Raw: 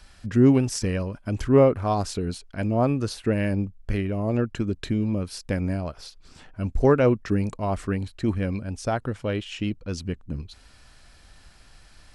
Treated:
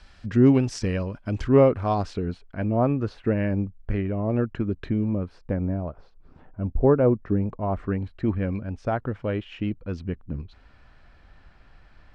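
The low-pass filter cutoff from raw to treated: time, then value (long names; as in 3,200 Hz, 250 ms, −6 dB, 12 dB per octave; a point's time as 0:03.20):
0:01.88 4,800 Hz
0:02.32 2,000 Hz
0:04.86 2,000 Hz
0:05.66 1,000 Hz
0:07.32 1,000 Hz
0:08.19 2,100 Hz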